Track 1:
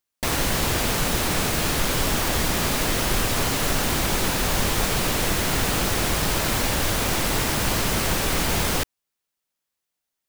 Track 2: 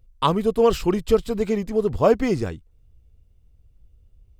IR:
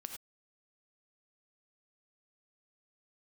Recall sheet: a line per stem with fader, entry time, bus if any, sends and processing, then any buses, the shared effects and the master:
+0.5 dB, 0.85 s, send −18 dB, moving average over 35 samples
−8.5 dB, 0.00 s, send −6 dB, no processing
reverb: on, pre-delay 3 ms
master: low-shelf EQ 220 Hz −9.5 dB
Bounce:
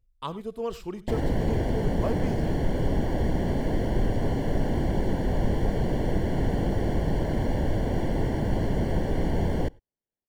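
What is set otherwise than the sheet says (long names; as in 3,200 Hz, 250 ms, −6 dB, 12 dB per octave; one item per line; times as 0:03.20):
stem 2 −8.5 dB → −16.5 dB
master: missing low-shelf EQ 220 Hz −9.5 dB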